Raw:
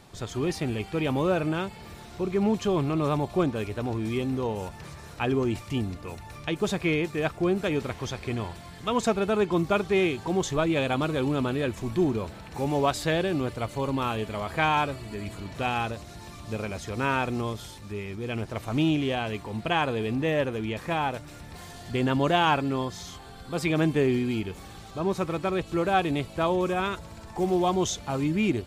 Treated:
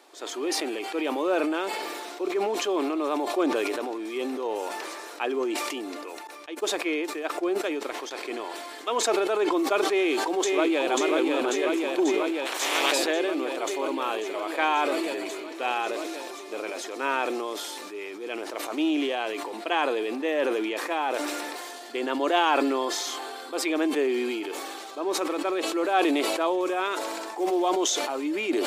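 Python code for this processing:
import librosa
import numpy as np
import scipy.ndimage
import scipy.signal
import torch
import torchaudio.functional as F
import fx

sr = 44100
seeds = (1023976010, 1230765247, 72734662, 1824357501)

y = fx.upward_expand(x, sr, threshold_db=-38.0, expansion=2.5, at=(6.27, 8.11))
y = fx.echo_throw(y, sr, start_s=9.85, length_s=1.06, ms=540, feedback_pct=80, wet_db=-2.5)
y = fx.spec_clip(y, sr, under_db=29, at=(12.45, 12.91), fade=0.02)
y = scipy.signal.sosfilt(scipy.signal.ellip(4, 1.0, 50, 300.0, 'highpass', fs=sr, output='sos'), y)
y = fx.sustainer(y, sr, db_per_s=21.0)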